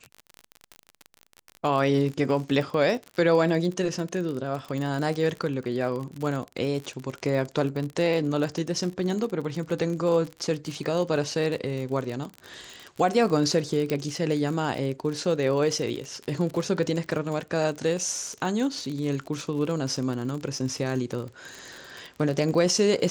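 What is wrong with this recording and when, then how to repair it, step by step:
crackle 43/s -30 dBFS
13.9 pop -15 dBFS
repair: de-click

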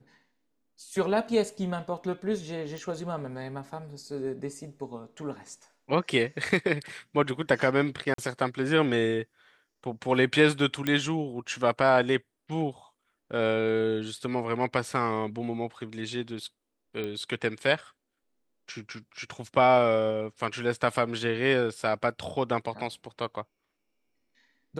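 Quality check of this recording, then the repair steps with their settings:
2.78 pop
8.14–8.18 gap 43 ms
10.87 pop -14 dBFS
17.04 pop -22 dBFS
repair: de-click; interpolate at 8.14, 43 ms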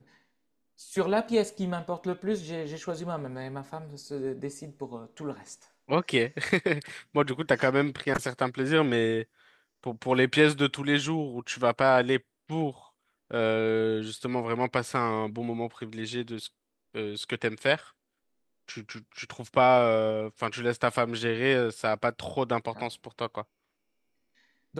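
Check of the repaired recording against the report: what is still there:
none

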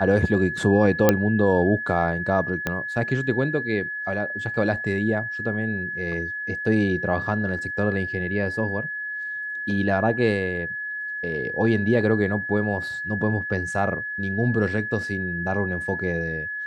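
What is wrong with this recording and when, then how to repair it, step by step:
tone 1700 Hz -28 dBFS
1.09 pop -2 dBFS
2.67 pop -10 dBFS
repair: de-click; notch 1700 Hz, Q 30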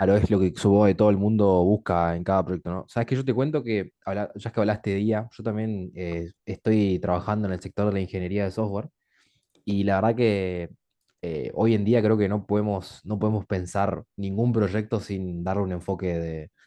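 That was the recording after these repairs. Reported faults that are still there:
2.67 pop

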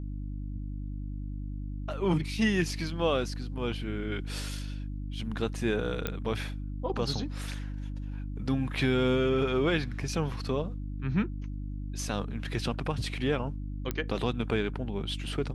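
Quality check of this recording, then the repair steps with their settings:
hum 50 Hz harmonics 6 -36 dBFS
6.07 pop -16 dBFS
13.91 pop -16 dBFS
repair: de-click; de-hum 50 Hz, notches 6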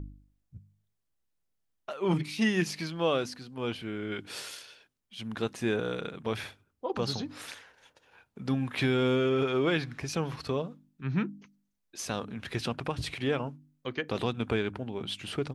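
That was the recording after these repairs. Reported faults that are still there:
none

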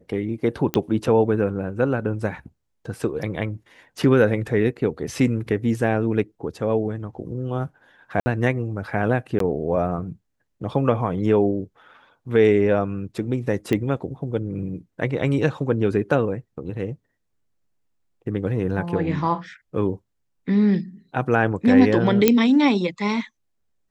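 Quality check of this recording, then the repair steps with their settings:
0.74 pop -7 dBFS
8.2–8.26 gap 60 ms
9.39–9.4 gap 13 ms
13.73 pop -11 dBFS
22.28 pop -1 dBFS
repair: de-click; interpolate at 8.2, 60 ms; interpolate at 9.39, 13 ms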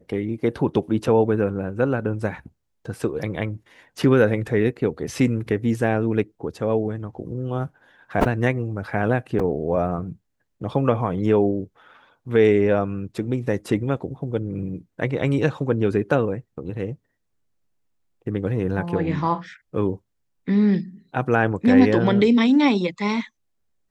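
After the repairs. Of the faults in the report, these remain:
none

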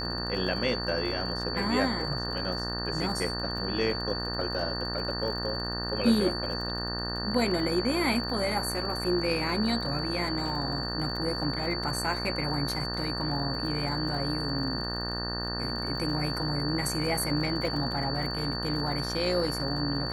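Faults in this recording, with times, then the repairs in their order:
buzz 60 Hz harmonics 31 -35 dBFS
crackle 48/s -37 dBFS
tone 4500 Hz -34 dBFS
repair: de-click; de-hum 60 Hz, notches 31; notch 4500 Hz, Q 30

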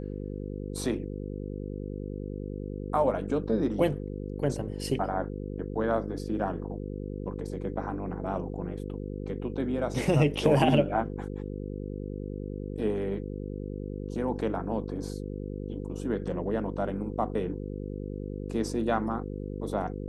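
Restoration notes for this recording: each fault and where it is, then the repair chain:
buzz 50 Hz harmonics 10 -36 dBFS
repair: de-hum 50 Hz, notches 10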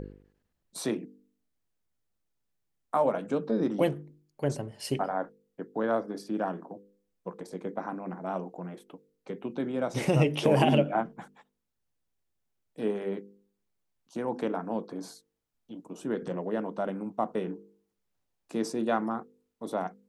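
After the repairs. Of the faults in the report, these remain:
none

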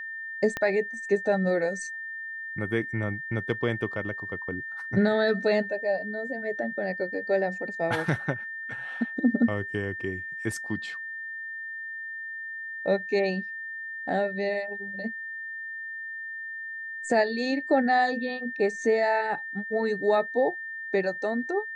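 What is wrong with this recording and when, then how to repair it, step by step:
tone 1800 Hz -34 dBFS
0.57 pop -15 dBFS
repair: de-click; notch 1800 Hz, Q 30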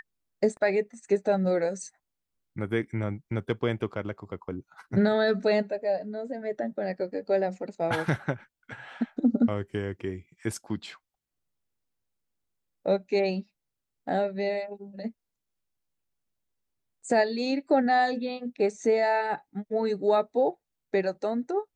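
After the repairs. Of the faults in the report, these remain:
0.57 pop

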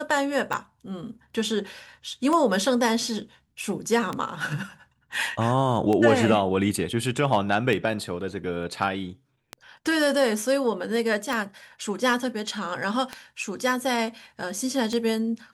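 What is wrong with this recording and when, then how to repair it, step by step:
tick 33 1/3 rpm -14 dBFS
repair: de-click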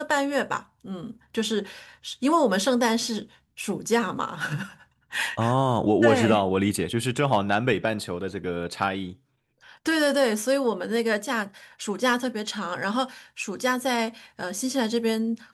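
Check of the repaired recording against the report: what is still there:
none

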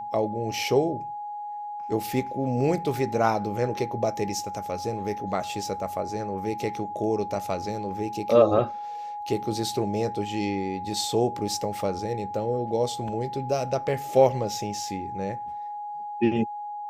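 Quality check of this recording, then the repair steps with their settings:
tone 830 Hz -32 dBFS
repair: notch 830 Hz, Q 30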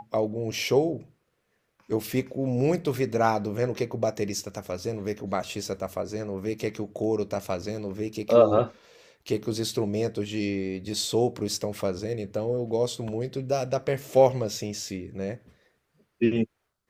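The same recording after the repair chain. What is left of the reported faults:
none

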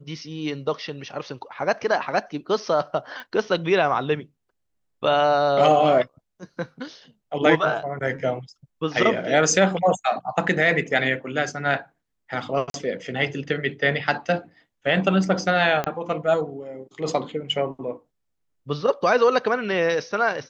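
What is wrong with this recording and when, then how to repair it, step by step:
3.2 pop -24 dBFS
12.7–12.74 gap 42 ms
15.84 pop -11 dBFS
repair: de-click; interpolate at 12.7, 42 ms

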